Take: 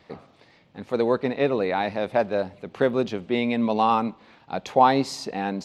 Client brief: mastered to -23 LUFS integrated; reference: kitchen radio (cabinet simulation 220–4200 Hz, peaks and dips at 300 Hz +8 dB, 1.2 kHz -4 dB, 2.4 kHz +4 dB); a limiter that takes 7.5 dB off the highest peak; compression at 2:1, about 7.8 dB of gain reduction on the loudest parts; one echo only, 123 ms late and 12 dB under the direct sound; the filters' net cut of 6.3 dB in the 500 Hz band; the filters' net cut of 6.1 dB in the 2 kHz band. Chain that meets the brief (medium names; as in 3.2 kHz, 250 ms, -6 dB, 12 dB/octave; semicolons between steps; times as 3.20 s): peaking EQ 500 Hz -8 dB; peaking EQ 2 kHz -9 dB; compression 2:1, threshold -29 dBFS; peak limiter -22 dBFS; cabinet simulation 220–4200 Hz, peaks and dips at 300 Hz +8 dB, 1.2 kHz -4 dB, 2.4 kHz +4 dB; delay 123 ms -12 dB; trim +11 dB